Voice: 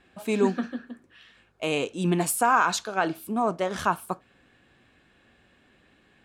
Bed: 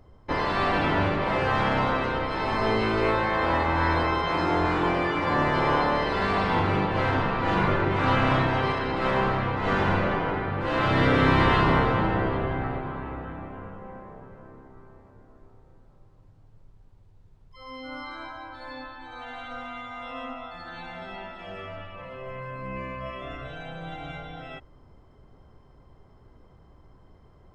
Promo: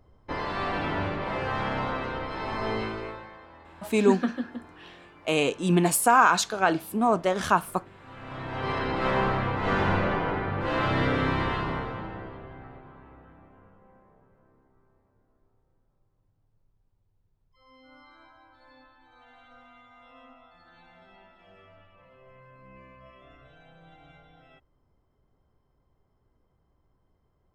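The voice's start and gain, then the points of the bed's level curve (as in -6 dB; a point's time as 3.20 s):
3.65 s, +2.5 dB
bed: 2.81 s -5.5 dB
3.50 s -27 dB
8.05 s -27 dB
8.77 s -1 dB
10.69 s -1 dB
12.42 s -16 dB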